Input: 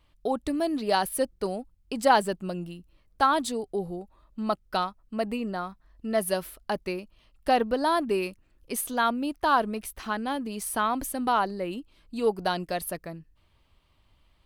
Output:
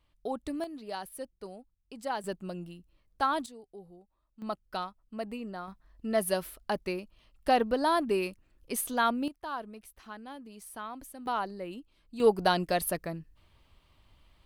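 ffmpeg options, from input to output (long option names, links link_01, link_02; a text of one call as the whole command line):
ffmpeg -i in.wav -af "asetnsamples=nb_out_samples=441:pad=0,asendcmd='0.64 volume volume -14dB;2.24 volume volume -6dB;3.46 volume volume -18dB;4.42 volume volume -8dB;5.68 volume volume -2dB;9.28 volume volume -14.5dB;11.26 volume volume -7.5dB;12.2 volume volume 2dB',volume=-7dB" out.wav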